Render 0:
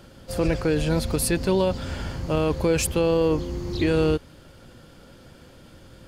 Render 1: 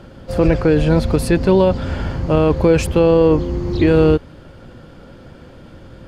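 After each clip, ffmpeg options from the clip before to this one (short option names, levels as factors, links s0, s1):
-af "lowpass=f=1700:p=1,volume=2.82"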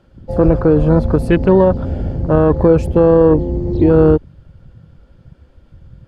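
-af "afwtdn=0.0562,volume=1.33"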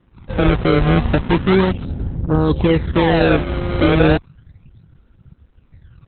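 -af "equalizer=f=590:w=5:g=-15,acrusher=samples=28:mix=1:aa=0.000001:lfo=1:lforange=44.8:lforate=0.34,volume=0.841" -ar 48000 -c:a libopus -b:a 8k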